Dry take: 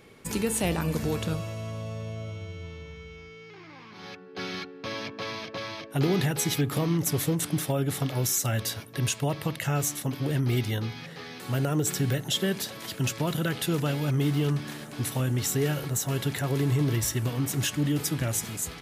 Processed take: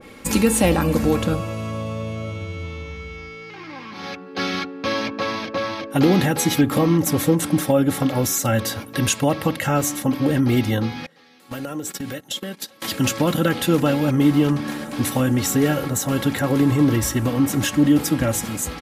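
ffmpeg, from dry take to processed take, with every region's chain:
-filter_complex "[0:a]asettb=1/sr,asplit=3[a][b][c];[a]atrim=end=11.064[d];[b]atrim=start=11.06:end=12.82,asetpts=PTS-STARTPTS,afade=t=in:d=0.004:c=qsin,afade=t=out:st=1.756:d=0.004:c=qsin,highpass=f=170:p=1,agate=range=-21dB:threshold=-32dB:ratio=16:release=100:detection=peak,acompressor=threshold=-36dB:ratio=6:attack=3.2:release=140:knee=1:detection=peak[e];[c]atrim=start=12.816[f];[d][e]acrossfade=d=0.004:c1=hsin:c2=qsin[g];[g][f]acrossfade=d=0.004:c1=qsin:c2=hsin,aecho=1:1:3.7:0.56,acontrast=34,adynamicequalizer=threshold=0.00794:dfrequency=1900:dqfactor=0.7:tfrequency=1900:tqfactor=0.7:attack=5:release=100:ratio=0.375:range=3.5:mode=cutabove:tftype=highshelf,volume=4.5dB"

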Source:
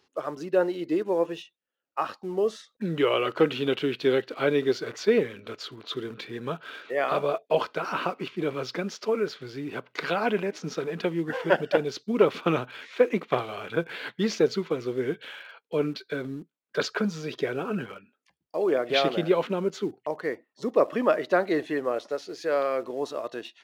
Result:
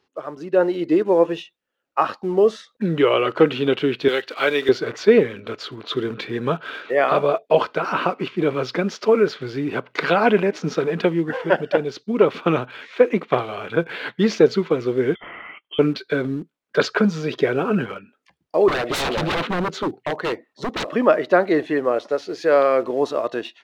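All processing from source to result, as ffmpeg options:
-filter_complex "[0:a]asettb=1/sr,asplit=3[a][b][c];[a]atrim=end=4.084[d];[b]atrim=start=4.08:end=4.69,asetpts=PTS-STARTPTS,afade=t=in:d=0.004:c=qsin,afade=t=out:st=0.606:d=0.004:c=qsin,highpass=f=850:p=1,highshelf=f=2.1k:g=7.5,acrusher=bits=7:mode=log:mix=0:aa=0.000001[e];[c]atrim=start=4.686[f];[d][e]acrossfade=d=0.004:c1=hsin:c2=qsin[g];[g][f]acrossfade=d=0.004:c1=qsin:c2=hsin,asettb=1/sr,asplit=3[h][i][j];[h]atrim=end=15.154[k];[i]atrim=start=15.15:end=15.79,asetpts=PTS-STARTPTS,afade=t=in:d=0.004:c=qsin,afade=t=out:st=0.636:d=0.004:c=qsin,acompressor=threshold=-39dB:ratio=6:attack=3.2:release=140:knee=1:detection=peak,lowpass=f=3.1k:t=q:w=0.5098,lowpass=f=3.1k:t=q:w=0.6013,lowpass=f=3.1k:t=q:w=0.9,lowpass=f=3.1k:t=q:w=2.563,afreqshift=-3600[l];[j]atrim=start=15.786[m];[k][l]acrossfade=d=0.004:c1=hsin:c2=qsin[n];[n][m]acrossfade=d=0.004:c1=qsin:c2=hsin,asettb=1/sr,asplit=3[o][p][q];[o]atrim=end=18.684[r];[p]atrim=start=18.68:end=20.95,asetpts=PTS-STARTPTS,afade=t=in:d=0.004:c=qsin,afade=t=out:st=2.266:d=0.004:c=qsin,aeval=exprs='0.0447*(abs(mod(val(0)/0.0447+3,4)-2)-1)':c=same,equalizer=f=3.9k:t=o:w=0.26:g=4.5[s];[q]atrim=start=20.946[t];[r][s]acrossfade=d=0.004:c1=hsin:c2=qsin[u];[u][t]acrossfade=d=0.004:c1=qsin:c2=hsin,highshelf=f=5.3k:g=-11,dynaudnorm=f=380:g=3:m=10.5dB"

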